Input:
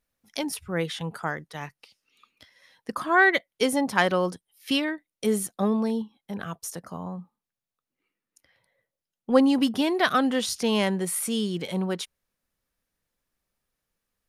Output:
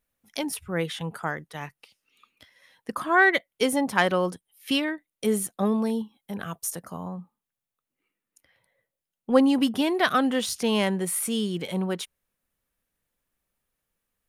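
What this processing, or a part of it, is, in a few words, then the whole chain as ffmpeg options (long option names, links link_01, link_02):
exciter from parts: -filter_complex "[0:a]asplit=2[link_01][link_02];[link_02]highpass=frequency=2800:width=0.5412,highpass=frequency=2800:width=1.3066,asoftclip=type=tanh:threshold=-31.5dB,highpass=4500,volume=-6dB[link_03];[link_01][link_03]amix=inputs=2:normalize=0,asettb=1/sr,asplit=3[link_04][link_05][link_06];[link_04]atrim=end=5.654[link_07];[link_05]atrim=start=5.65:end=7.09,asetpts=PTS-STARTPTS,afade=type=in:duration=0.004:curve=qsin,afade=type=out:start_time=1.436:duration=0.004:curve=qsin,highshelf=frequency=5800:gain=6[link_08];[link_06]atrim=start=7.086[link_09];[link_07][link_08]acrossfade=duration=0.004:curve1=hsin:curve2=qsin[link_10];[link_10][link_09]acrossfade=duration=0.004:curve1=qsin:curve2=hsin"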